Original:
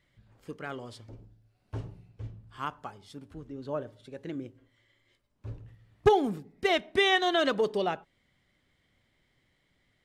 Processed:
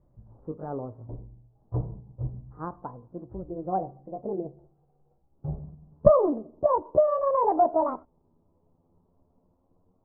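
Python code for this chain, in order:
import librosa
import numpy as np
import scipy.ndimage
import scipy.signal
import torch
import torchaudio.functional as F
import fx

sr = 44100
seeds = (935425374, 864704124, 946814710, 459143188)

y = fx.pitch_glide(x, sr, semitones=10.5, runs='starting unshifted')
y = scipy.signal.sosfilt(scipy.signal.butter(6, 1000.0, 'lowpass', fs=sr, output='sos'), y)
y = fx.low_shelf(y, sr, hz=68.0, db=6.5)
y = y * 10.0 ** (7.0 / 20.0)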